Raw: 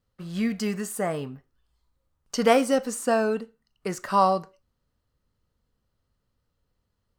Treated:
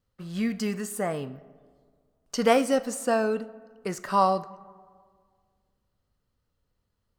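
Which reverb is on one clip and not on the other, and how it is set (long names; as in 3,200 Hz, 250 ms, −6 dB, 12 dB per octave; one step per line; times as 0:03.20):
comb and all-pass reverb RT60 1.9 s, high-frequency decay 0.4×, pre-delay 15 ms, DRR 18.5 dB
level −1.5 dB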